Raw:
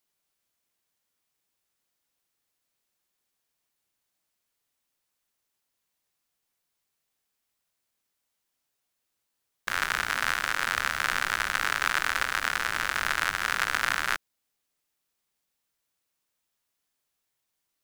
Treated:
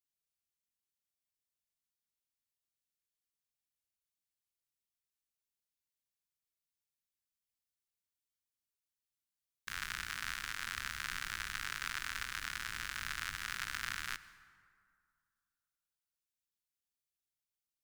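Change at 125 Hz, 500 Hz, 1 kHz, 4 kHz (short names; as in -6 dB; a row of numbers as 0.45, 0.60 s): -7.5, -23.0, -16.0, -10.0 dB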